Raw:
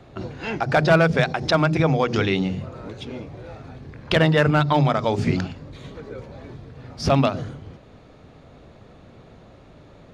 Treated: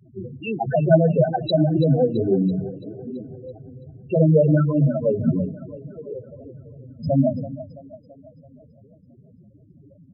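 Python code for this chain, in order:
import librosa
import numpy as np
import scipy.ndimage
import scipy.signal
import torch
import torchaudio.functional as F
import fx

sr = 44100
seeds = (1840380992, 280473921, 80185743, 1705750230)

p1 = fx.rotary_switch(x, sr, hz=8.0, then_hz=0.9, switch_at_s=3.71)
p2 = fx.spec_topn(p1, sr, count=4)
p3 = scipy.signal.sosfilt(scipy.signal.butter(2, 160.0, 'highpass', fs=sr, output='sos'), p2)
p4 = p3 + fx.echo_split(p3, sr, split_hz=310.0, low_ms=112, high_ms=333, feedback_pct=52, wet_db=-13.5, dry=0)
y = p4 * 10.0 ** (7.5 / 20.0)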